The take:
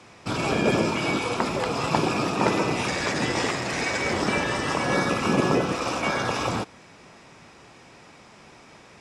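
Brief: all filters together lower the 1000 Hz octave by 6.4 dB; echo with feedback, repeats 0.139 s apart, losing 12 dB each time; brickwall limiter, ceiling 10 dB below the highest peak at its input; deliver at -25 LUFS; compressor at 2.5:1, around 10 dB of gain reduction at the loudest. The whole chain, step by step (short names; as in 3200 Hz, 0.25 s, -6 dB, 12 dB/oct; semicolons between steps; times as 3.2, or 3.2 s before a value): bell 1000 Hz -8.5 dB; compressor 2.5:1, threshold -34 dBFS; limiter -26.5 dBFS; feedback echo 0.139 s, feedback 25%, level -12 dB; gain +10.5 dB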